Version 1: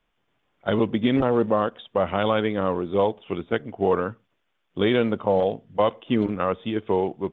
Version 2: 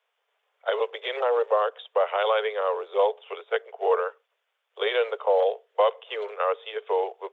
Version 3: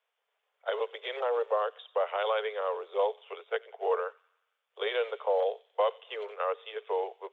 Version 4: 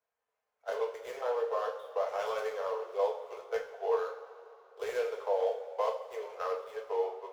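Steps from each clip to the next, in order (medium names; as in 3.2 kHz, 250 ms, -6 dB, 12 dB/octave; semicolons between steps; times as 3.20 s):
steep high-pass 420 Hz 96 dB/octave
feedback echo behind a high-pass 91 ms, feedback 57%, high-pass 2.8 kHz, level -14.5 dB; trim -6 dB
median filter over 15 samples; two-slope reverb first 0.39 s, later 3.1 s, from -18 dB, DRR -1.5 dB; trim -6 dB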